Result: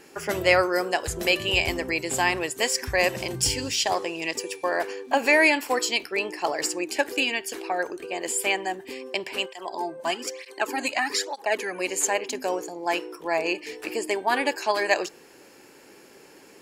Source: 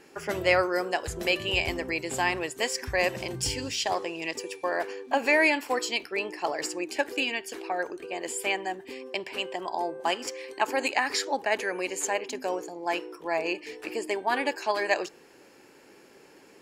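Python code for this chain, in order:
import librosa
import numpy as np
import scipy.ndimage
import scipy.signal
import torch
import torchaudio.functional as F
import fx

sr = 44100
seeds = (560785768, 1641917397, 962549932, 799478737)

y = fx.high_shelf(x, sr, hz=6300.0, db=6.5)
y = fx.flanger_cancel(y, sr, hz=1.1, depth_ms=2.7, at=(9.45, 11.79), fade=0.02)
y = y * 10.0 ** (3.0 / 20.0)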